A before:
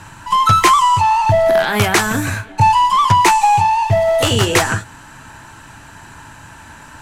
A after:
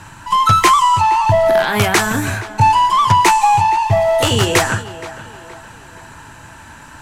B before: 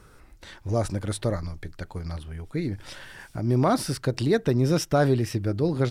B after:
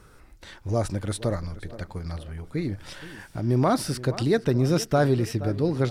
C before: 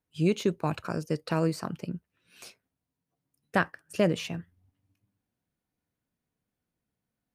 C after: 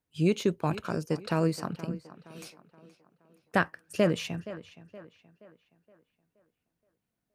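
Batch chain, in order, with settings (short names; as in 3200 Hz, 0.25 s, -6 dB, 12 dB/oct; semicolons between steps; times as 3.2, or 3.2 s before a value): tape echo 0.472 s, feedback 46%, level -15 dB, low-pass 3500 Hz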